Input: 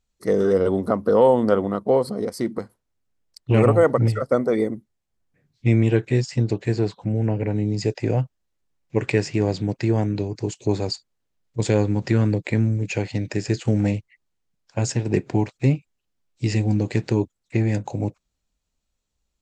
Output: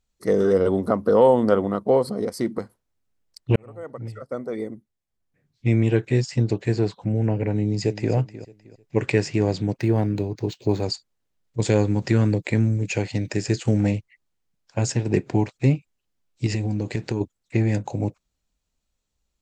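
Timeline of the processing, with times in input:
0:03.56–0:06.26: fade in
0:07.55–0:08.13: delay throw 310 ms, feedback 30%, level −14.5 dB
0:09.78–0:10.83: linearly interpolated sample-rate reduction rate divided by 4×
0:11.67–0:13.77: high-shelf EQ 7,700 Hz +7 dB
0:16.46–0:17.21: downward compressor, threshold −20 dBFS

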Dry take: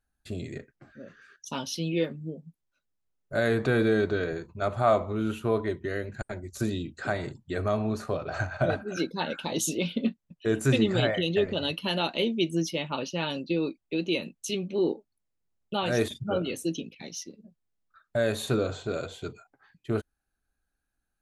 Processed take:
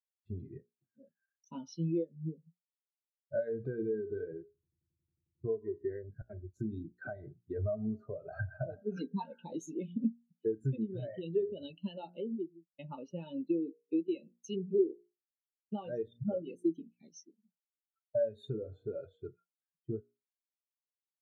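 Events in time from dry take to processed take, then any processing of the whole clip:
0:04.45: stutter in place 0.09 s, 11 plays
0:08.86–0:09.27: comb filter 4.3 ms, depth 92%
0:11.83–0:12.79: fade out and dull
whole clip: hum removal 58.91 Hz, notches 33; downward compressor 16 to 1, threshold −31 dBFS; every bin expanded away from the loudest bin 2.5 to 1

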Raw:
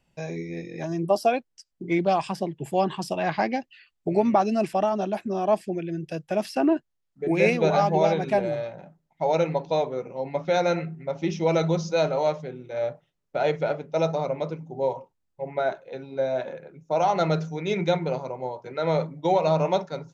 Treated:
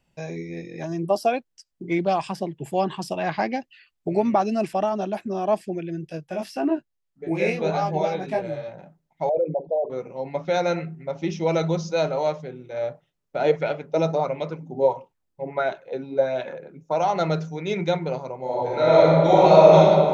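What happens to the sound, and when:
0:06.07–0:08.68: chorus effect 1.7 Hz, delay 17.5 ms, depth 5.1 ms
0:09.29–0:09.90: spectral envelope exaggerated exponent 3
0:13.39–0:16.96: auto-filter bell 1.5 Hz 220–3,100 Hz +9 dB
0:18.42–0:19.78: thrown reverb, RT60 2.2 s, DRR −9 dB

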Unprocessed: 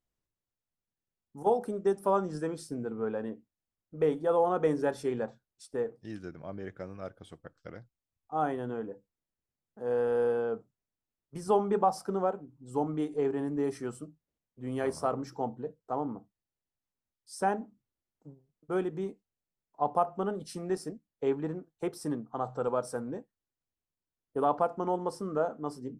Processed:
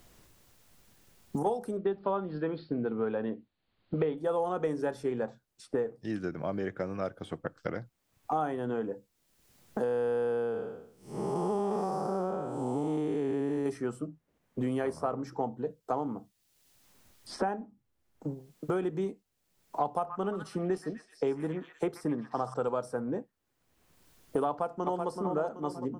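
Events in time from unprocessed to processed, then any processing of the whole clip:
0:01.77–0:04.18: Butterworth low-pass 4,500 Hz 96 dB per octave
0:09.83–0:13.66: spectrum smeared in time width 334 ms
0:17.36–0:18.83: tuned comb filter 820 Hz, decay 0.22 s, mix 40%
0:19.95–0:22.54: echo through a band-pass that steps 127 ms, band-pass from 1,500 Hz, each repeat 0.7 octaves, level −5 dB
0:24.48–0:25.10: delay throw 380 ms, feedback 40%, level −7.5 dB
whole clip: multiband upward and downward compressor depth 100%

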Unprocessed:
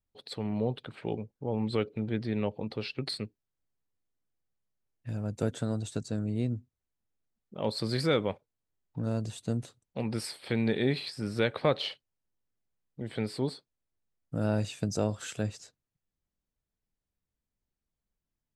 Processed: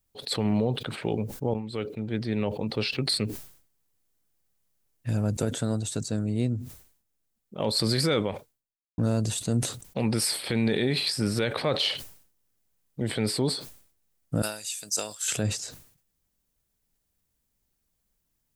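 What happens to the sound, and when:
0:01.54–0:03.23: fade in linear, from −17 dB
0:05.45–0:07.60: clip gain −4.5 dB
0:08.22–0:08.98: fade out exponential
0:14.42–0:15.28: first difference
whole clip: high-shelf EQ 6,200 Hz +11 dB; brickwall limiter −23.5 dBFS; level that may fall only so fast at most 100 dB per second; level +8 dB

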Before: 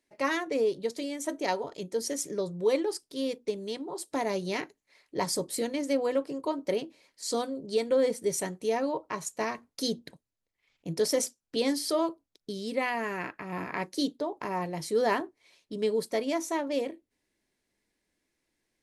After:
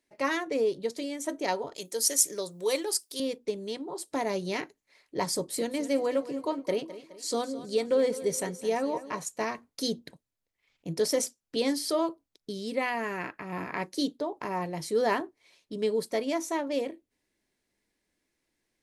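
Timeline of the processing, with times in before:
0:01.76–0:03.20: RIAA equalisation recording
0:05.35–0:09.23: repeating echo 210 ms, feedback 47%, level −15 dB

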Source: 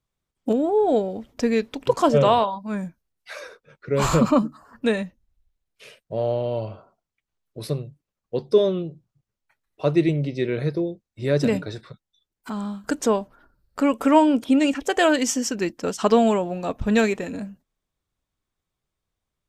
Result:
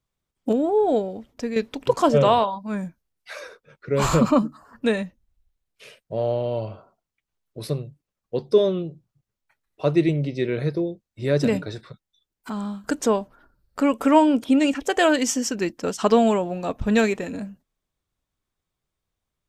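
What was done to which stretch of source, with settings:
0:00.80–0:01.56: fade out, to −8 dB

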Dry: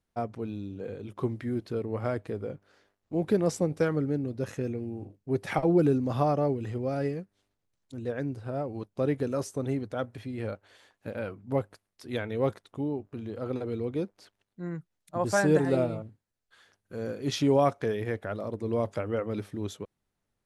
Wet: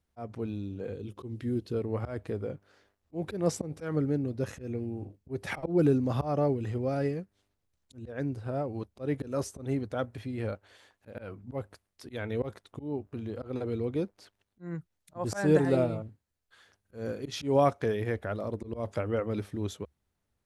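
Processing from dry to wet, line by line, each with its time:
0:00.94–0:01.75: gain on a spectral selection 530–2,500 Hz −7 dB
whole clip: volume swells 160 ms; parametric band 71 Hz +12.5 dB 0.45 octaves

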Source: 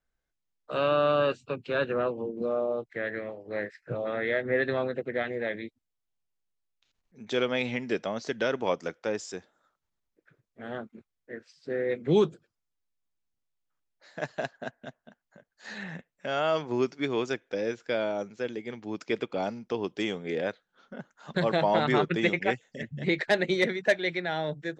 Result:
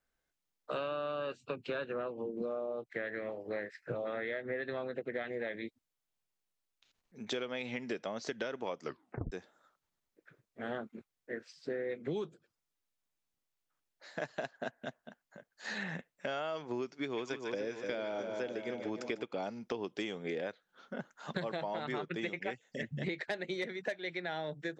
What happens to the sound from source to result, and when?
0:08.82: tape stop 0.50 s
0:16.98–0:19.24: echo with a time of its own for lows and highs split 1,000 Hz, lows 298 ms, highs 148 ms, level −8 dB
whole clip: low-shelf EQ 110 Hz −9 dB; downward compressor 10 to 1, threshold −36 dBFS; level +2 dB

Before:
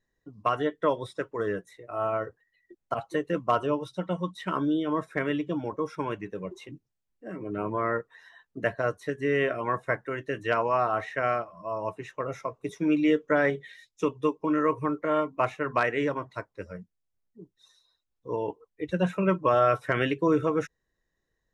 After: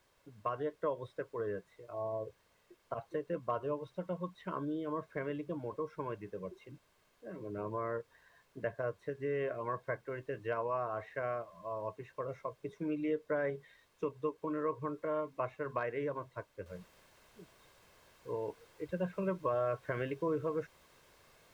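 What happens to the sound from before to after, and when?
0:01.93–0:02.39: time-frequency box erased 1,100–3,400 Hz
0:16.66: noise floor change −55 dB −47 dB
whole clip: low-pass filter 1,200 Hz 6 dB per octave; comb filter 1.9 ms, depth 38%; downward compressor 1.5 to 1, threshold −29 dBFS; level −7 dB

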